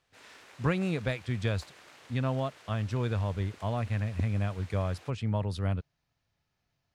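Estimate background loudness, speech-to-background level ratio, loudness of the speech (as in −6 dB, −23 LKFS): −51.0 LKFS, 19.0 dB, −32.0 LKFS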